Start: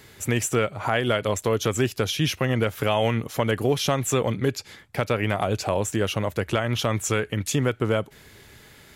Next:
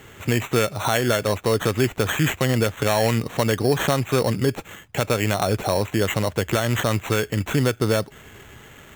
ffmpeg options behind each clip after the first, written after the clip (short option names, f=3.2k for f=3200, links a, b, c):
-filter_complex "[0:a]lowpass=f=5.1k:w=0.5412,lowpass=f=5.1k:w=1.3066,asplit=2[a][b];[b]alimiter=limit=-20dB:level=0:latency=1:release=91,volume=-1.5dB[c];[a][c]amix=inputs=2:normalize=0,acrusher=samples=9:mix=1:aa=0.000001"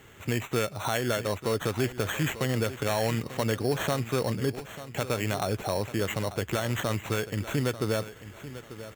-af "aecho=1:1:892|1784|2676:0.2|0.0579|0.0168,volume=-7.5dB"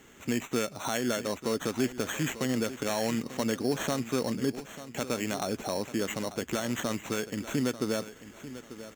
-af "equalizer=f=100:t=o:w=0.67:g=-11,equalizer=f=250:t=o:w=0.67:g=8,equalizer=f=6.3k:t=o:w=0.67:g=7,volume=-3.5dB"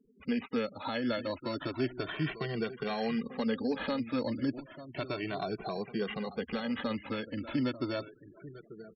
-filter_complex "[0:a]aresample=11025,aresample=44100,afftfilt=real='re*gte(hypot(re,im),0.00794)':imag='im*gte(hypot(re,im),0.00794)':win_size=1024:overlap=0.75,asplit=2[a][b];[b]adelay=2.1,afreqshift=0.32[c];[a][c]amix=inputs=2:normalize=1"